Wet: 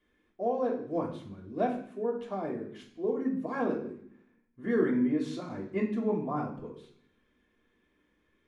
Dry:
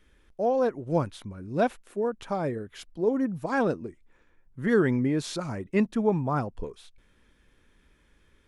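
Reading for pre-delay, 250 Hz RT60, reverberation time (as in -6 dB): 3 ms, 1.0 s, 0.60 s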